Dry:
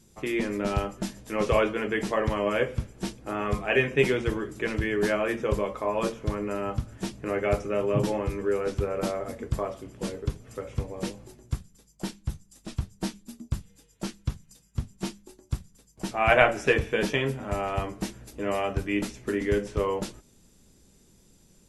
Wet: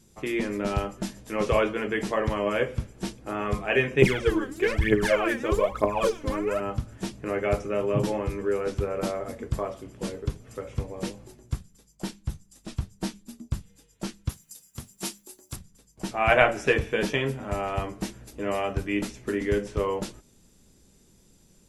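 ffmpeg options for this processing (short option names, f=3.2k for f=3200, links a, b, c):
-filter_complex "[0:a]asettb=1/sr,asplit=3[a][b][c];[a]atrim=end=4.024[d];[b]atrim=start=4.02:end=6.6,asetpts=PTS-STARTPTS,afade=t=in:d=0.004:c=qsin,afade=t=out:st=2.576:d=0.004:c=qsin,aphaser=in_gain=1:out_gain=1:delay=4:decay=0.76:speed=1.1:type=triangular[e];[c]atrim=start=6.596[f];[d][e]acrossfade=d=0.004:c1=hsin:c2=qsin[g];[g][f]acrossfade=d=0.004:c1=qsin:c2=hsin,asettb=1/sr,asplit=3[h][i][j];[h]atrim=end=14.294[k];[i]atrim=start=14.29:end=15.56,asetpts=PTS-STARTPTS,afade=t=in:d=0.004:c=qsin,afade=t=out:st=1.266:d=0.004:c=qsin,aemphasis=mode=production:type=bsi[l];[j]atrim=start=15.556[m];[k][l]acrossfade=d=0.004:c1=hsin:c2=qsin[n];[n][m]acrossfade=d=0.004:c1=qsin:c2=hsin"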